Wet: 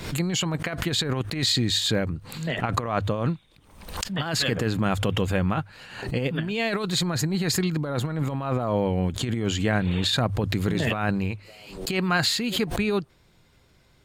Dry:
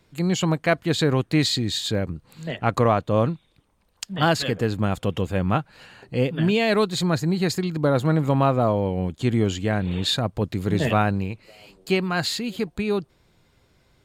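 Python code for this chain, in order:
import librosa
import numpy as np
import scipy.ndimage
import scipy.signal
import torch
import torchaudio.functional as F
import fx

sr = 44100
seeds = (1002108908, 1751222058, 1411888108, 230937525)

y = fx.peak_eq(x, sr, hz=470.0, db=-2.5, octaves=2.7)
y = fx.hum_notches(y, sr, base_hz=50, count=2)
y = fx.over_compress(y, sr, threshold_db=-24.0, ratio=-0.5)
y = fx.dynamic_eq(y, sr, hz=1600.0, q=0.89, threshold_db=-44.0, ratio=4.0, max_db=3)
y = fx.pre_swell(y, sr, db_per_s=77.0)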